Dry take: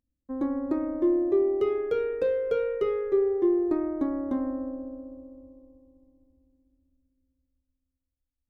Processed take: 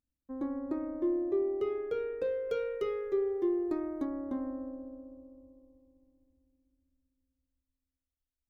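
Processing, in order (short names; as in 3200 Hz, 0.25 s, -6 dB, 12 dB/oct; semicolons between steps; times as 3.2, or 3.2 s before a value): 2.49–4.05 high shelf 3100 Hz +11.5 dB; gain -7 dB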